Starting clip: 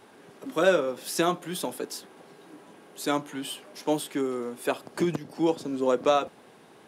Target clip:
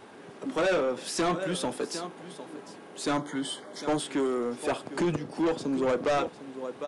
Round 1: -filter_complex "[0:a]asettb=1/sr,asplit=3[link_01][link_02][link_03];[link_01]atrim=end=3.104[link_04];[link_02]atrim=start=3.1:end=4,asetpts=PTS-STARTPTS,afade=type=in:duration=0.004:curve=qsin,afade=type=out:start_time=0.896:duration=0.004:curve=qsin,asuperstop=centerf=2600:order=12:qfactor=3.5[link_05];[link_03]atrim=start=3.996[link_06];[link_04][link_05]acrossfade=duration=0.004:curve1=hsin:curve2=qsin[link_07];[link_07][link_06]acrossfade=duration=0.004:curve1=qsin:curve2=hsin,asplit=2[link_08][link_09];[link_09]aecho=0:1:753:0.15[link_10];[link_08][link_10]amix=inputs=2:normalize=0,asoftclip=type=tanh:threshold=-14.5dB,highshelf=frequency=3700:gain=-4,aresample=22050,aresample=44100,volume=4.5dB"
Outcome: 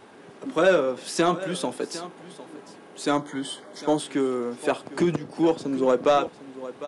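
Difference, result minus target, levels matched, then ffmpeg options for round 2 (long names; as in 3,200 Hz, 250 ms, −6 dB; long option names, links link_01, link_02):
soft clipping: distortion −12 dB
-filter_complex "[0:a]asettb=1/sr,asplit=3[link_01][link_02][link_03];[link_01]atrim=end=3.104[link_04];[link_02]atrim=start=3.1:end=4,asetpts=PTS-STARTPTS,afade=type=in:duration=0.004:curve=qsin,afade=type=out:start_time=0.896:duration=0.004:curve=qsin,asuperstop=centerf=2600:order=12:qfactor=3.5[link_05];[link_03]atrim=start=3.996[link_06];[link_04][link_05]acrossfade=duration=0.004:curve1=hsin:curve2=qsin[link_07];[link_07][link_06]acrossfade=duration=0.004:curve1=qsin:curve2=hsin,asplit=2[link_08][link_09];[link_09]aecho=0:1:753:0.15[link_10];[link_08][link_10]amix=inputs=2:normalize=0,asoftclip=type=tanh:threshold=-26.5dB,highshelf=frequency=3700:gain=-4,aresample=22050,aresample=44100,volume=4.5dB"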